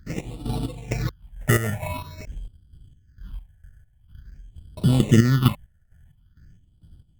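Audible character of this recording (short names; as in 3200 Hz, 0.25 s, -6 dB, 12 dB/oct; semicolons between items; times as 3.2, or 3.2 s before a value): chopped level 2.2 Hz, depth 65%, duty 45%; aliases and images of a low sample rate 1600 Hz, jitter 0%; phasing stages 6, 0.47 Hz, lowest notch 280–1900 Hz; Opus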